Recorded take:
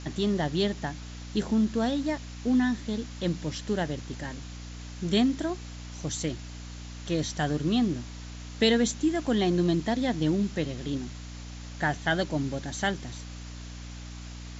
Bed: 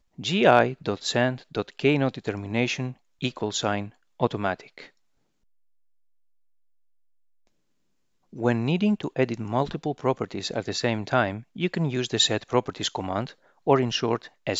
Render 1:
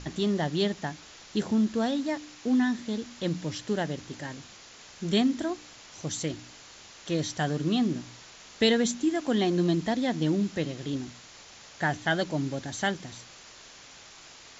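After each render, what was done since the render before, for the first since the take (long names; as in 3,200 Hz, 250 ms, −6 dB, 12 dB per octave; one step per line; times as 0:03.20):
hum removal 60 Hz, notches 5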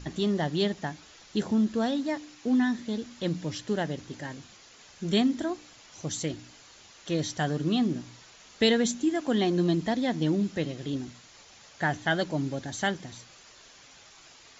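broadband denoise 6 dB, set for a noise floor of −50 dBFS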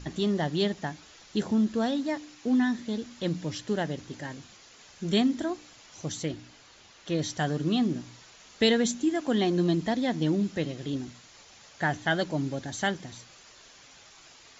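0:06.12–0:07.22: high-frequency loss of the air 57 metres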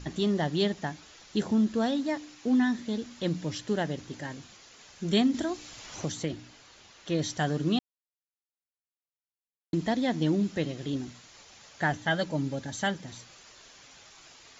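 0:05.34–0:06.33: multiband upward and downward compressor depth 70%
0:07.79–0:09.73: silence
0:11.92–0:13.08: notch comb filter 360 Hz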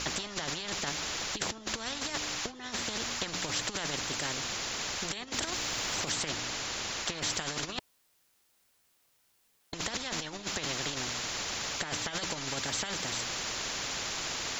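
compressor whose output falls as the input rises −32 dBFS, ratio −0.5
every bin compressed towards the loudest bin 4 to 1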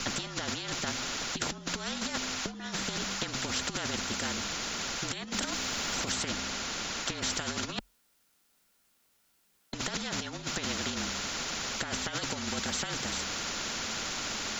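frequency shifter −44 Hz
hollow resonant body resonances 220/1,400 Hz, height 7 dB, ringing for 35 ms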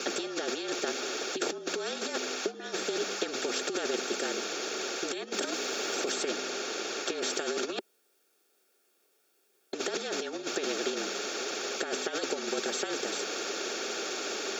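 high-pass with resonance 390 Hz, resonance Q 4.8
notch comb filter 1,000 Hz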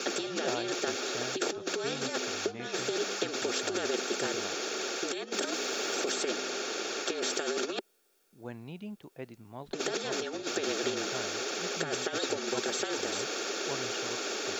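mix in bed −19.5 dB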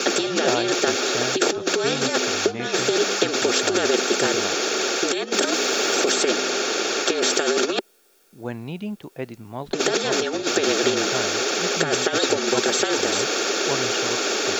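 level +11.5 dB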